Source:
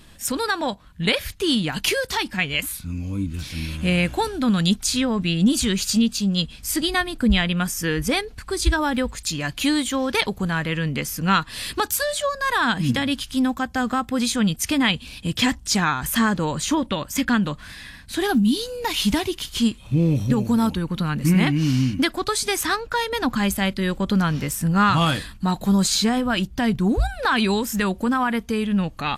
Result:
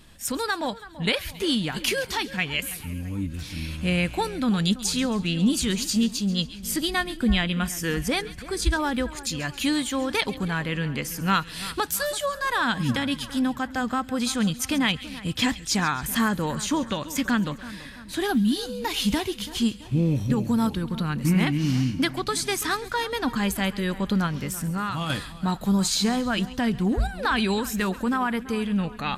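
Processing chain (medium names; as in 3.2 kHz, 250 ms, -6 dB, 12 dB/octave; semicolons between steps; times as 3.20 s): 24.26–25.10 s: compression, threshold -22 dBFS, peak gain reduction 8.5 dB; on a send: two-band feedback delay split 2.1 kHz, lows 333 ms, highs 136 ms, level -16 dB; on the sum: trim -3.5 dB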